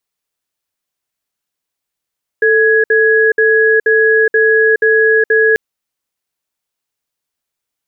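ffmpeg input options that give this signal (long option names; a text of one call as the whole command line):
ffmpeg -f lavfi -i "aevalsrc='0.316*(sin(2*PI*442*t)+sin(2*PI*1670*t))*clip(min(mod(t,0.48),0.42-mod(t,0.48))/0.005,0,1)':duration=3.14:sample_rate=44100" out.wav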